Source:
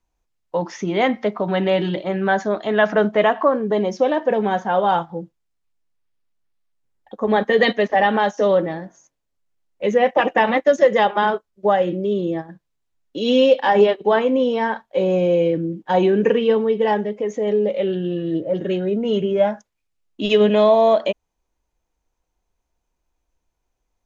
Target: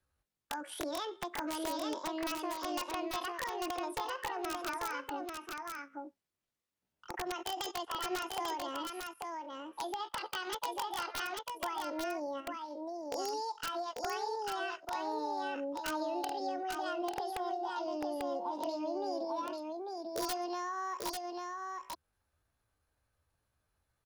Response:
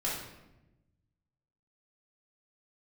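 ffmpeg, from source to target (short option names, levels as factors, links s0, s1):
-filter_complex "[0:a]highpass=f=47:p=1,acompressor=threshold=0.0282:ratio=4,asetrate=74167,aresample=44100,atempo=0.594604,acrossover=split=280|3000[s0][s1][s2];[s1]acompressor=threshold=0.02:ratio=3[s3];[s0][s3][s2]amix=inputs=3:normalize=0,aeval=exprs='(mod(17.8*val(0)+1,2)-1)/17.8':c=same,aecho=1:1:843:0.668,volume=0.668"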